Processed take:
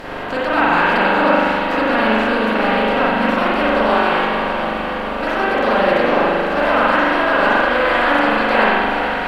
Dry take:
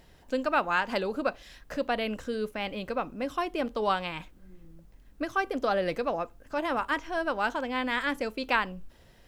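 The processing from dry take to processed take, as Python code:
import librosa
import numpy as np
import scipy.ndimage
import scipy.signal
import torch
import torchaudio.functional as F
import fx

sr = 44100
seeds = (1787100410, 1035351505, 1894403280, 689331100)

y = fx.bin_compress(x, sr, power=0.4)
y = fx.echo_swing(y, sr, ms=727, ratio=1.5, feedback_pct=64, wet_db=-9.0)
y = fx.rev_spring(y, sr, rt60_s=1.8, pass_ms=(41,), chirp_ms=60, drr_db=-8.5)
y = y * 10.0 ** (-1.5 / 20.0)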